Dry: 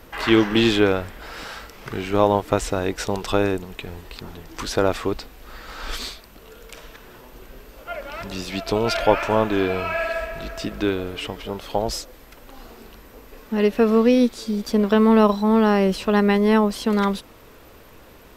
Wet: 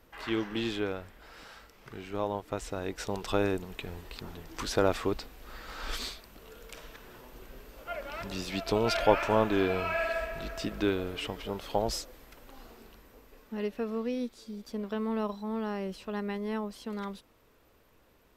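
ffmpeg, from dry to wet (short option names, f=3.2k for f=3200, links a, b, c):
-af "volume=-6dB,afade=t=in:st=2.51:d=1.24:silence=0.354813,afade=t=out:st=11.97:d=1.9:silence=0.281838"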